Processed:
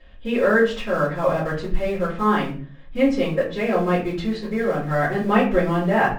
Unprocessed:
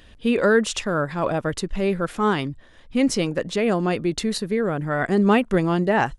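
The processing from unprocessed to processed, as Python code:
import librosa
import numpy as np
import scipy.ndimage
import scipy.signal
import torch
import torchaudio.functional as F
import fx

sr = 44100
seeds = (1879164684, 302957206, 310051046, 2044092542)

p1 = scipy.signal.sosfilt(scipy.signal.butter(2, 2700.0, 'lowpass', fs=sr, output='sos'), x)
p2 = fx.low_shelf(p1, sr, hz=270.0, db=-4.5)
p3 = np.where(np.abs(p2) >= 10.0 ** (-26.5 / 20.0), p2, 0.0)
p4 = p2 + (p3 * librosa.db_to_amplitude(-10.5))
p5 = fx.room_shoebox(p4, sr, seeds[0], volume_m3=34.0, walls='mixed', distance_m=2.2)
y = p5 * librosa.db_to_amplitude(-12.5)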